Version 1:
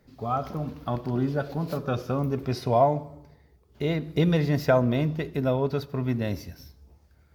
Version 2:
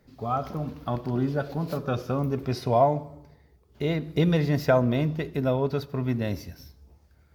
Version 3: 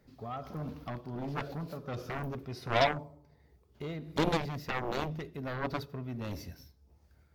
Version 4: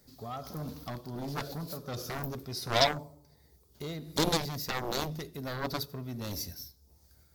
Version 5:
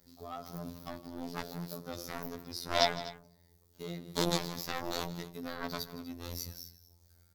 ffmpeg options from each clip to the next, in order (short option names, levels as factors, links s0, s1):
-af anull
-af "tremolo=f=1.4:d=0.59,aeval=exprs='0.299*(cos(1*acos(clip(val(0)/0.299,-1,1)))-cos(1*PI/2))+0.106*(cos(7*acos(clip(val(0)/0.299,-1,1)))-cos(7*PI/2))':c=same,volume=0.447"
-af "aexciter=amount=3.6:drive=7.3:freq=3800"
-af "aecho=1:1:161|247:0.141|0.133,afftfilt=real='hypot(re,im)*cos(PI*b)':imag='0':win_size=2048:overlap=0.75"